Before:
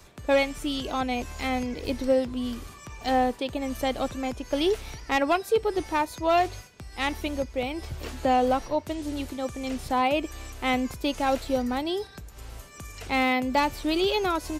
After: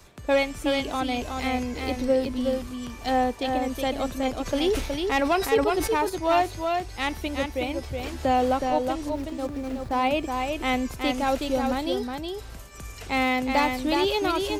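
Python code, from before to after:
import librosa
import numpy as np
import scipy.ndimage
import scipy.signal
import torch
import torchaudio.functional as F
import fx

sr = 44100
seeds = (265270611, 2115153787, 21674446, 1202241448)

y = fx.median_filter(x, sr, points=15, at=(9.09, 10.03))
y = y + 10.0 ** (-4.5 / 20.0) * np.pad(y, (int(369 * sr / 1000.0), 0))[:len(y)]
y = fx.sustainer(y, sr, db_per_s=73.0, at=(4.45, 6.08), fade=0.02)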